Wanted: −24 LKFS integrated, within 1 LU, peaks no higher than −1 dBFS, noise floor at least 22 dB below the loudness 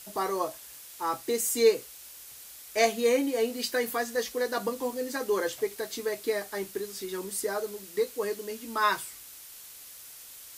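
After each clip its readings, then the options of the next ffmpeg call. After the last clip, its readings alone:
background noise floor −47 dBFS; target noise floor −52 dBFS; integrated loudness −29.5 LKFS; sample peak −10.5 dBFS; target loudness −24.0 LKFS
→ -af "afftdn=noise_reduction=6:noise_floor=-47"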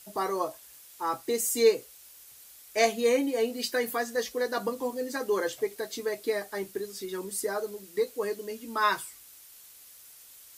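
background noise floor −52 dBFS; integrated loudness −29.5 LKFS; sample peak −10.5 dBFS; target loudness −24.0 LKFS
→ -af "volume=5.5dB"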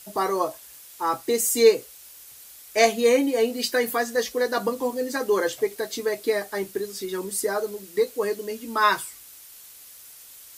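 integrated loudness −24.0 LKFS; sample peak −5.0 dBFS; background noise floor −47 dBFS

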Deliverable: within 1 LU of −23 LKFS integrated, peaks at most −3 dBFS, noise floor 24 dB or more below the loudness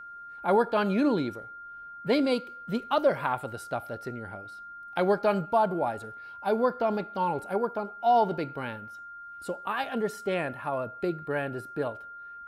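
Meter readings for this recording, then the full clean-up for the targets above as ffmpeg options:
interfering tone 1,400 Hz; level of the tone −41 dBFS; integrated loudness −29.0 LKFS; sample peak −13.0 dBFS; target loudness −23.0 LKFS
→ -af "bandreject=frequency=1400:width=30"
-af "volume=6dB"

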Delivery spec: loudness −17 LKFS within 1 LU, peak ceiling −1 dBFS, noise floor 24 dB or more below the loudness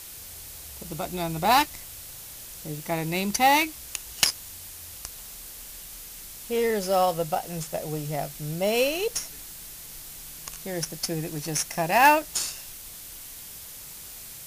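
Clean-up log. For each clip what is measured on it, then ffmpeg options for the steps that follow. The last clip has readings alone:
background noise floor −42 dBFS; target noise floor −50 dBFS; integrated loudness −25.5 LKFS; sample peak −4.5 dBFS; target loudness −17.0 LKFS
→ -af "afftdn=noise_reduction=8:noise_floor=-42"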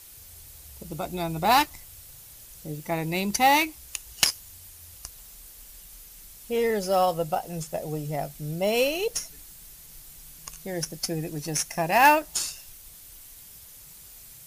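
background noise floor −48 dBFS; target noise floor −50 dBFS
→ -af "afftdn=noise_reduction=6:noise_floor=-48"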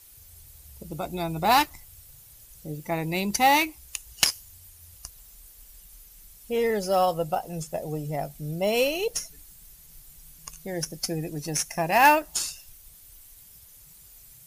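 background noise floor −51 dBFS; integrated loudness −25.5 LKFS; sample peak −4.5 dBFS; target loudness −17.0 LKFS
→ -af "volume=8.5dB,alimiter=limit=-1dB:level=0:latency=1"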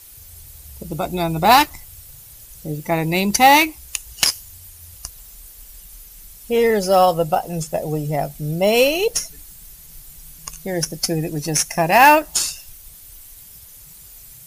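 integrated loudness −17.5 LKFS; sample peak −1.0 dBFS; background noise floor −43 dBFS

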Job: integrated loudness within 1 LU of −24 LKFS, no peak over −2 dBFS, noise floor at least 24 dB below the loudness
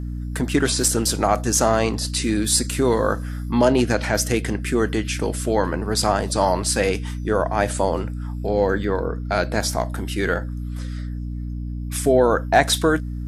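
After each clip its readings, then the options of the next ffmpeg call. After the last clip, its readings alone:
mains hum 60 Hz; hum harmonics up to 300 Hz; level of the hum −26 dBFS; integrated loudness −21.5 LKFS; sample peak −2.0 dBFS; target loudness −24.0 LKFS
→ -af "bandreject=frequency=60:width_type=h:width=4,bandreject=frequency=120:width_type=h:width=4,bandreject=frequency=180:width_type=h:width=4,bandreject=frequency=240:width_type=h:width=4,bandreject=frequency=300:width_type=h:width=4"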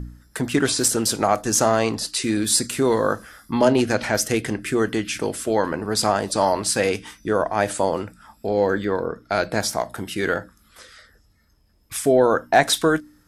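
mains hum none found; integrated loudness −21.5 LKFS; sample peak −2.0 dBFS; target loudness −24.0 LKFS
→ -af "volume=-2.5dB"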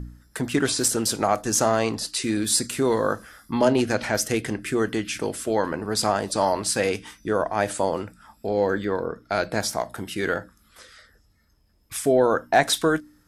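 integrated loudness −24.0 LKFS; sample peak −4.5 dBFS; background noise floor −61 dBFS

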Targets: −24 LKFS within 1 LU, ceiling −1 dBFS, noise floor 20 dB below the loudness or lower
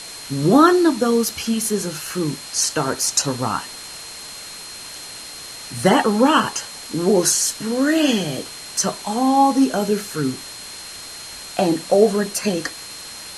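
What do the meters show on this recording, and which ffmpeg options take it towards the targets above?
interfering tone 4,200 Hz; level of the tone −37 dBFS; background noise floor −36 dBFS; target noise floor −39 dBFS; integrated loudness −19.0 LKFS; sample peak −1.0 dBFS; target loudness −24.0 LKFS
→ -af "bandreject=frequency=4200:width=30"
-af "afftdn=noise_reduction=6:noise_floor=-36"
-af "volume=-5dB"

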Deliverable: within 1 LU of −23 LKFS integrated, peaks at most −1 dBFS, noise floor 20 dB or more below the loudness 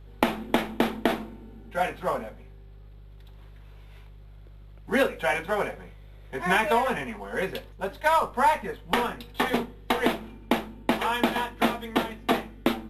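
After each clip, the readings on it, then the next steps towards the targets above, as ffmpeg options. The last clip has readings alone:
mains hum 50 Hz; hum harmonics up to 150 Hz; level of the hum −44 dBFS; integrated loudness −27.0 LKFS; sample peak −6.0 dBFS; target loudness −23.0 LKFS
→ -af "bandreject=frequency=50:width_type=h:width=4,bandreject=frequency=100:width_type=h:width=4,bandreject=frequency=150:width_type=h:width=4"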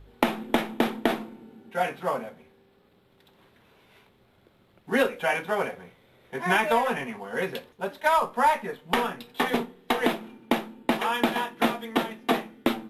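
mains hum none found; integrated loudness −27.0 LKFS; sample peak −6.0 dBFS; target loudness −23.0 LKFS
→ -af "volume=4dB"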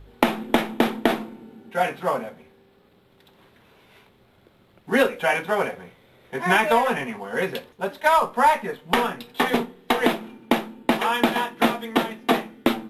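integrated loudness −23.0 LKFS; sample peak −2.0 dBFS; background noise floor −58 dBFS

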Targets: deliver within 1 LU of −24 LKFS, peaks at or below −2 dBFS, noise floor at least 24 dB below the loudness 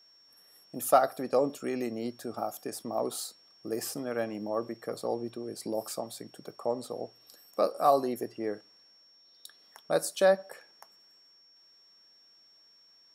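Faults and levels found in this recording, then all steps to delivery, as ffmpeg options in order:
interfering tone 5,500 Hz; level of the tone −58 dBFS; integrated loudness −31.5 LKFS; sample peak −8.5 dBFS; target loudness −24.0 LKFS
→ -af "bandreject=frequency=5500:width=30"
-af "volume=7.5dB,alimiter=limit=-2dB:level=0:latency=1"

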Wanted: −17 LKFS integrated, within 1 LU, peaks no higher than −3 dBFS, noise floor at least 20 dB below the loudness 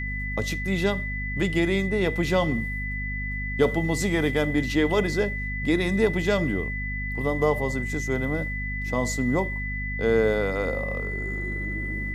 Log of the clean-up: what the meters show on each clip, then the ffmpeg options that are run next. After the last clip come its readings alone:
mains hum 50 Hz; hum harmonics up to 250 Hz; level of the hum −29 dBFS; interfering tone 2,000 Hz; level of the tone −31 dBFS; integrated loudness −25.5 LKFS; sample peak −8.0 dBFS; target loudness −17.0 LKFS
→ -af "bandreject=frequency=50:width_type=h:width=4,bandreject=frequency=100:width_type=h:width=4,bandreject=frequency=150:width_type=h:width=4,bandreject=frequency=200:width_type=h:width=4,bandreject=frequency=250:width_type=h:width=4"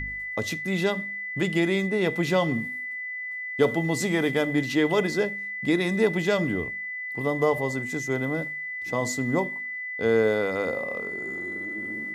mains hum none found; interfering tone 2,000 Hz; level of the tone −31 dBFS
→ -af "bandreject=frequency=2000:width=30"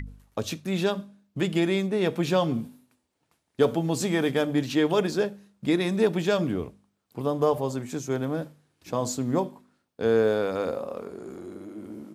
interfering tone none found; integrated loudness −26.5 LKFS; sample peak −8.5 dBFS; target loudness −17.0 LKFS
→ -af "volume=9.5dB,alimiter=limit=-3dB:level=0:latency=1"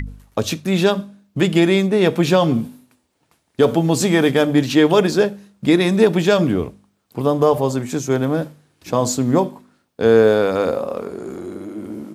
integrated loudness −17.5 LKFS; sample peak −3.0 dBFS; background noise floor −67 dBFS

